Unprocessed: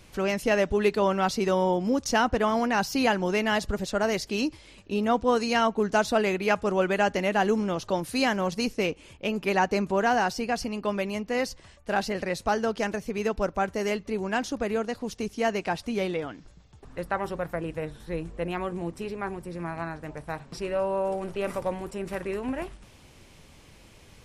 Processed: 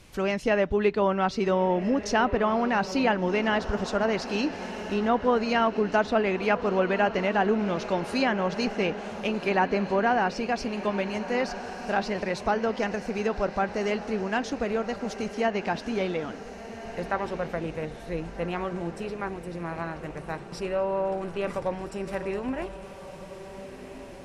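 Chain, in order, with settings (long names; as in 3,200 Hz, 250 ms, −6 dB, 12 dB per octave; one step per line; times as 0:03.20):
feedback delay with all-pass diffusion 1,475 ms, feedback 54%, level −12 dB
treble cut that deepens with the level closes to 2,800 Hz, closed at −19.5 dBFS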